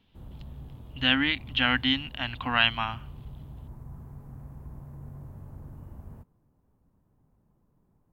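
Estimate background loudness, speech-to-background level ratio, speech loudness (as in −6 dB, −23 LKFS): −45.5 LKFS, 20.0 dB, −25.5 LKFS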